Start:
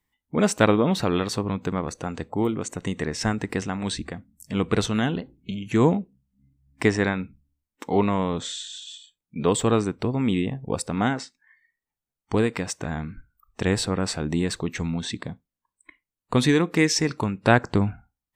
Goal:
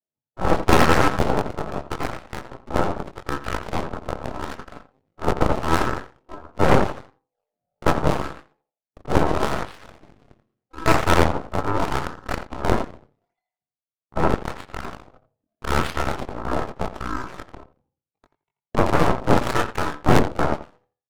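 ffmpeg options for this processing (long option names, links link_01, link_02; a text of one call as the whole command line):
ffmpeg -i in.wav -filter_complex "[0:a]asplit=2[link_01][link_02];[link_02]adelay=200,highpass=300,lowpass=3400,asoftclip=type=hard:threshold=-10dB,volume=-14dB[link_03];[link_01][link_03]amix=inputs=2:normalize=0,aeval=exprs='val(0)*sin(2*PI*870*n/s)':channel_layout=same,asetrate=33038,aresample=44100,atempo=1.33484,highshelf=frequency=7200:gain=-9,acrossover=split=120|790[link_04][link_05][link_06];[link_06]acrusher=samples=35:mix=1:aa=0.000001:lfo=1:lforange=56:lforate=0.92[link_07];[link_04][link_05][link_07]amix=inputs=3:normalize=0,flanger=delay=20:depth=4.6:speed=0.69,highpass=frequency=90:width=0.5412,highpass=frequency=90:width=1.3066,lowshelf=frequency=210:gain=8,adynamicsmooth=sensitivity=8:basefreq=5700,atempo=0.87,asplit=2[link_08][link_09];[link_09]adelay=85,lowpass=frequency=2900:poles=1,volume=-7.5dB,asplit=2[link_10][link_11];[link_11]adelay=85,lowpass=frequency=2900:poles=1,volume=0.21,asplit=2[link_12][link_13];[link_13]adelay=85,lowpass=frequency=2900:poles=1,volume=0.21[link_14];[link_10][link_12][link_14]amix=inputs=3:normalize=0[link_15];[link_08][link_15]amix=inputs=2:normalize=0,aeval=exprs='0.376*(cos(1*acos(clip(val(0)/0.376,-1,1)))-cos(1*PI/2))+0.0841*(cos(4*acos(clip(val(0)/0.376,-1,1)))-cos(4*PI/2))+0.00841*(cos(5*acos(clip(val(0)/0.376,-1,1)))-cos(5*PI/2))+0.0668*(cos(7*acos(clip(val(0)/0.376,-1,1)))-cos(7*PI/2))+0.0944*(cos(8*acos(clip(val(0)/0.376,-1,1)))-cos(8*PI/2))':channel_layout=same,volume=4dB" out.wav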